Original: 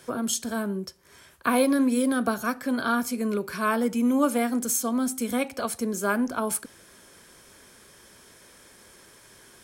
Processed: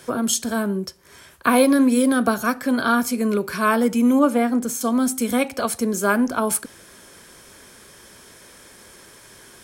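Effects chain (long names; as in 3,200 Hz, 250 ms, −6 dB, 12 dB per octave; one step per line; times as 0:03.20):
0:04.19–0:04.81: high-shelf EQ 3,000 Hz −10 dB
level +6 dB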